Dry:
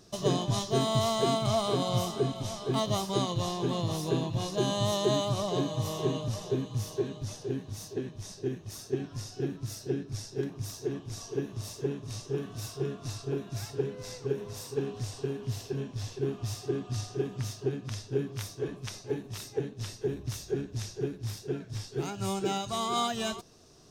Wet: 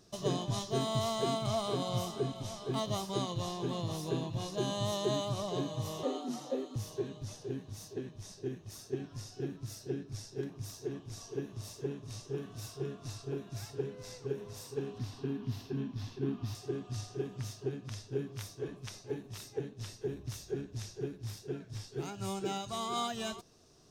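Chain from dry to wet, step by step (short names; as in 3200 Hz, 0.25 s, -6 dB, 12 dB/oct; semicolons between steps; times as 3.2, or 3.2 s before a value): 6.03–6.76 frequency shift +130 Hz; 14.98–16.55 graphic EQ 250/500/1000/4000/8000 Hz +11/-8/+4/+3/-11 dB; gain -5.5 dB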